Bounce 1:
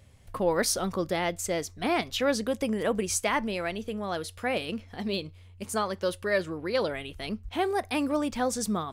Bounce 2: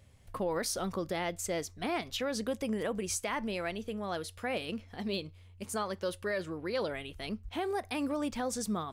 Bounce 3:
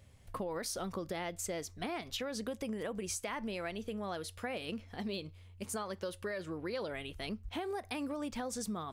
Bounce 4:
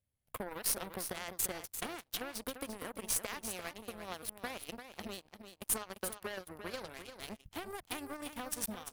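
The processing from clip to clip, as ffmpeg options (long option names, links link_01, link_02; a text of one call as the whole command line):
ffmpeg -i in.wav -af "alimiter=limit=-20dB:level=0:latency=1:release=76,volume=-4dB" out.wav
ffmpeg -i in.wav -af "acompressor=threshold=-35dB:ratio=6" out.wav
ffmpeg -i in.wav -af "aexciter=amount=4.3:drive=6.2:freq=9600,aeval=exprs='0.0891*(cos(1*acos(clip(val(0)/0.0891,-1,1)))-cos(1*PI/2))+0.0224*(cos(2*acos(clip(val(0)/0.0891,-1,1)))-cos(2*PI/2))+0.00126*(cos(3*acos(clip(val(0)/0.0891,-1,1)))-cos(3*PI/2))+0.0126*(cos(7*acos(clip(val(0)/0.0891,-1,1)))-cos(7*PI/2))+0.000708*(cos(8*acos(clip(val(0)/0.0891,-1,1)))-cos(8*PI/2))':channel_layout=same,aecho=1:1:345:0.355,volume=3dB" out.wav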